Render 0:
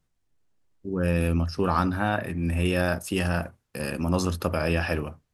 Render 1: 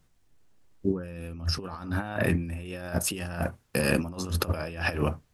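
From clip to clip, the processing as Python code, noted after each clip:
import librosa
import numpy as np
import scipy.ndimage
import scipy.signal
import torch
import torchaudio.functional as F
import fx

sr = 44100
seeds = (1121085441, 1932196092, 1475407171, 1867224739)

y = fx.over_compress(x, sr, threshold_db=-31.0, ratio=-0.5)
y = F.gain(torch.from_numpy(y), 2.5).numpy()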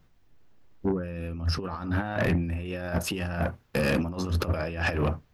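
y = fx.peak_eq(x, sr, hz=9200.0, db=-14.0, octaves=1.2)
y = 10.0 ** (-23.5 / 20.0) * np.tanh(y / 10.0 ** (-23.5 / 20.0))
y = F.gain(torch.from_numpy(y), 4.5).numpy()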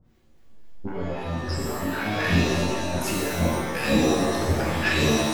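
y = fx.harmonic_tremolo(x, sr, hz=3.8, depth_pct=100, crossover_hz=870.0)
y = fx.rev_shimmer(y, sr, seeds[0], rt60_s=1.1, semitones=7, shimmer_db=-2, drr_db=-4.0)
y = F.gain(torch.from_numpy(y), 1.0).numpy()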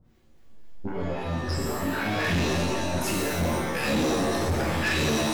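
y = np.clip(x, -10.0 ** (-21.5 / 20.0), 10.0 ** (-21.5 / 20.0))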